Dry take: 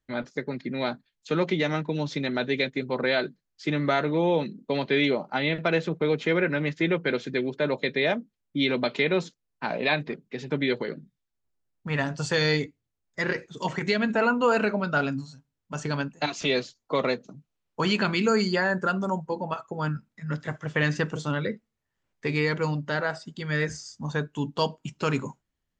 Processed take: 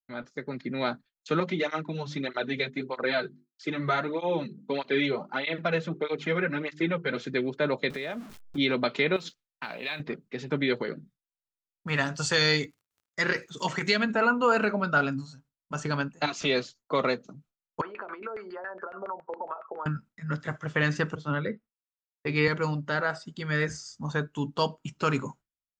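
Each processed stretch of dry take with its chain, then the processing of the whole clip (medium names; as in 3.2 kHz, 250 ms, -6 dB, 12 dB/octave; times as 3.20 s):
1.40–7.17 s: hum notches 50/100/150/200/250/300/350/400 Hz + cancelling through-zero flanger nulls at 1.6 Hz, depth 3.7 ms
7.90–8.58 s: jump at every zero crossing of -39.5 dBFS + compression 5:1, threshold -30 dBFS
9.16–10.00 s: compression, threshold -36 dBFS + peaking EQ 3.3 kHz +11.5 dB 1.9 oct + modulation noise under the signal 33 dB
11.87–14.03 s: high-pass 61 Hz + treble shelf 2.4 kHz +9 dB + crackle 46 per s -47 dBFS
17.81–19.86 s: high-pass 340 Hz 24 dB/octave + compression 16:1, threshold -35 dBFS + LFO low-pass saw down 7.2 Hz 500–2100 Hz
21.15–22.48 s: distance through air 160 m + three bands expanded up and down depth 100%
whole clip: level rider gain up to 7 dB; gate with hold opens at -39 dBFS; peaking EQ 1.3 kHz +5.5 dB 0.42 oct; trim -8 dB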